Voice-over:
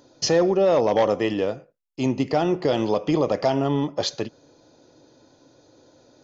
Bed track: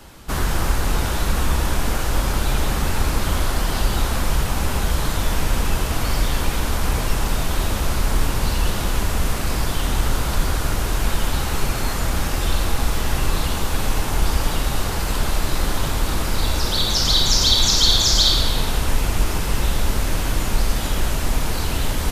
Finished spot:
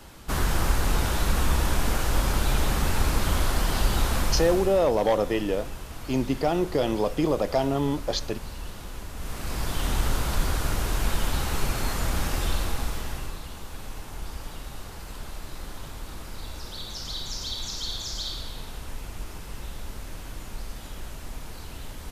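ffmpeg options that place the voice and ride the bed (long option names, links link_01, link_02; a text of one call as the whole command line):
ffmpeg -i stem1.wav -i stem2.wav -filter_complex "[0:a]adelay=4100,volume=-3dB[link_01];[1:a]volume=8.5dB,afade=type=out:start_time=4.2:duration=0.65:silence=0.211349,afade=type=in:start_time=9.14:duration=0.73:silence=0.251189,afade=type=out:start_time=12.36:duration=1.03:silence=0.251189[link_02];[link_01][link_02]amix=inputs=2:normalize=0" out.wav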